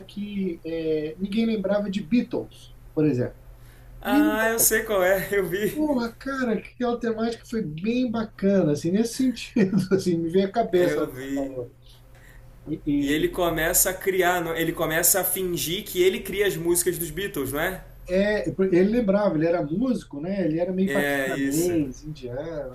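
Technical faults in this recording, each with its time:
0.58–0.59 gap 6.3 ms

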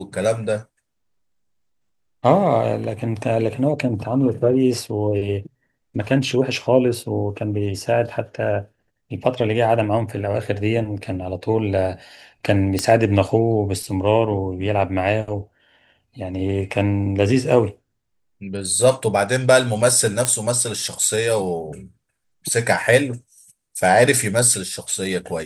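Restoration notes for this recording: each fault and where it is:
12.79 pop -6 dBFS
20.25 pop -3 dBFS

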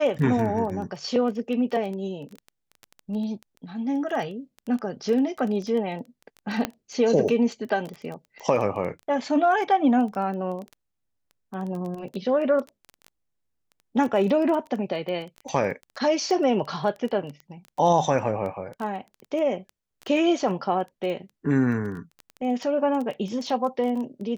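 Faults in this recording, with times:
crackle 11/s -30 dBFS
6.65 pop -10 dBFS

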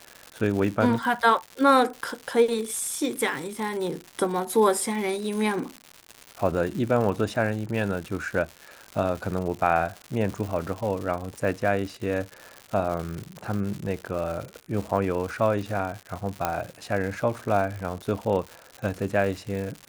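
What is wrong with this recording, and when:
crackle 200/s -31 dBFS
16.45 pop -9 dBFS

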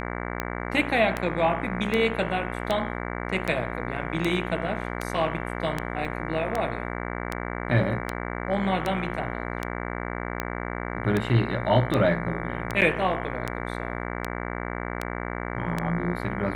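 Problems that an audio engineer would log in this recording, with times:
buzz 60 Hz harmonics 38 -32 dBFS
tick 78 rpm -12 dBFS
6.05 gap 2.7 ms
12.81–12.82 gap 8.2 ms

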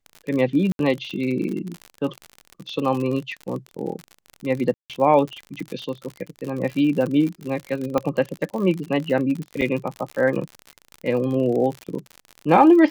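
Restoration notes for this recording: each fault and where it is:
crackle 55/s -27 dBFS
0.72–0.79 gap 72 ms
4.74–4.9 gap 0.157 s
7.98 pop -10 dBFS
9.61–9.62 gap 7 ms

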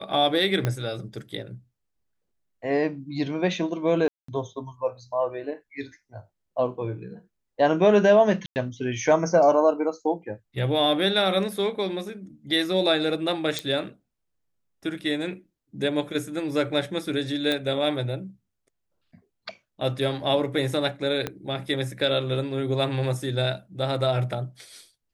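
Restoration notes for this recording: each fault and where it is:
0.65 pop -11 dBFS
4.08–4.28 gap 0.204 s
8.46–8.56 gap 99 ms
13.59 pop -13 dBFS
17.52 pop -13 dBFS
21.27 pop -13 dBFS

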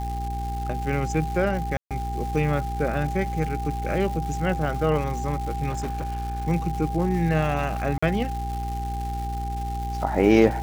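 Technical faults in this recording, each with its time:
crackle 480/s -33 dBFS
hum 60 Hz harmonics 7 -30 dBFS
tone 800 Hz -31 dBFS
1.77–1.91 gap 0.137 s
5.69–6.47 clipped -24.5 dBFS
7.98–8.03 gap 45 ms

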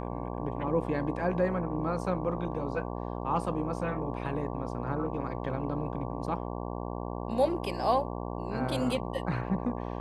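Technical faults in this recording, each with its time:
buzz 60 Hz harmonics 19 -36 dBFS

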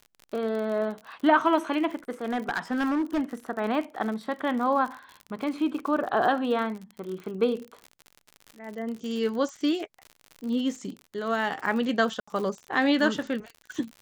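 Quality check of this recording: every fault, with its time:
crackle 57/s -34 dBFS
2.24–3.21 clipped -22.5 dBFS
12.2–12.28 gap 75 ms

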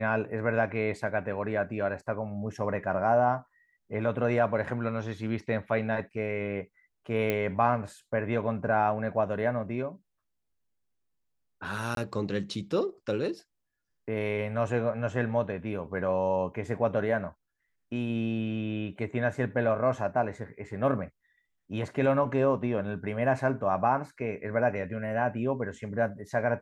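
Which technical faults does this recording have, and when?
7.3 pop -15 dBFS
11.95–11.97 gap 22 ms

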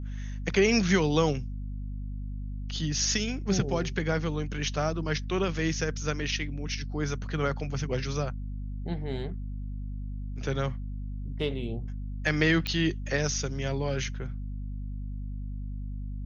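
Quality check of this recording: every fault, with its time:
hum 50 Hz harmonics 5 -35 dBFS
12.67 pop -16 dBFS

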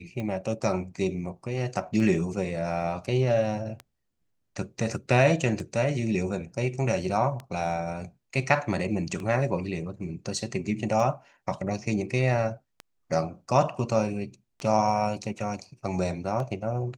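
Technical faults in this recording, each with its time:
tick 33 1/3 rpm -22 dBFS

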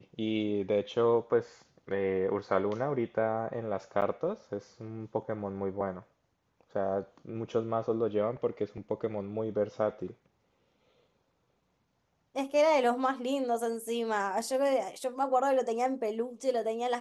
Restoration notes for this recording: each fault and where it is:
4.01–4.02 gap 8.1 ms

